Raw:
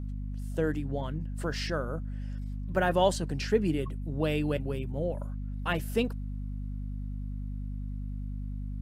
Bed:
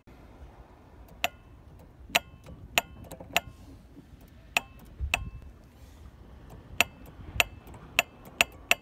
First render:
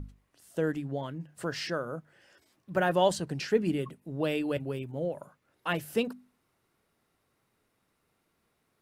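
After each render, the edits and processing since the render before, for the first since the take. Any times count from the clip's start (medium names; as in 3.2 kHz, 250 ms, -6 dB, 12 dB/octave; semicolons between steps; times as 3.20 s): hum notches 50/100/150/200/250 Hz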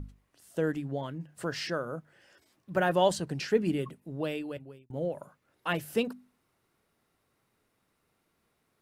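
3.97–4.90 s: fade out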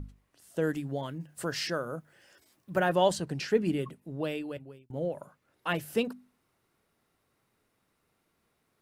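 0.61–2.78 s: treble shelf 4.5 kHz -> 8.7 kHz +9 dB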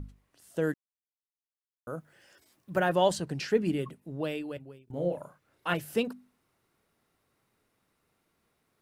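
0.74–1.87 s: mute; 4.84–5.74 s: doubling 34 ms -4 dB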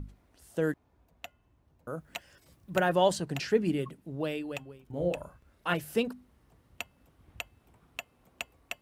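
add bed -15.5 dB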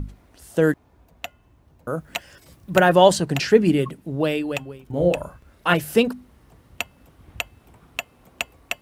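trim +11 dB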